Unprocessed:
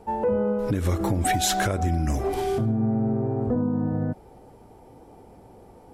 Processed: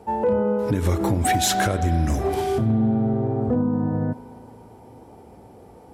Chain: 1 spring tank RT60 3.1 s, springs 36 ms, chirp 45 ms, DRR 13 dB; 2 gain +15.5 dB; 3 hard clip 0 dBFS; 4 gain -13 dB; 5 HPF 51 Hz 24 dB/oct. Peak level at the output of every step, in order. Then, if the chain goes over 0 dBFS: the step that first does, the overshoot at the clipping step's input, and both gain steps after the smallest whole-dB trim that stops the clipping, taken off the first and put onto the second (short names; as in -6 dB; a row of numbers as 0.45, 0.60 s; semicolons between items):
-12.0, +3.5, 0.0, -13.0, -8.0 dBFS; step 2, 3.5 dB; step 2 +11.5 dB, step 4 -9 dB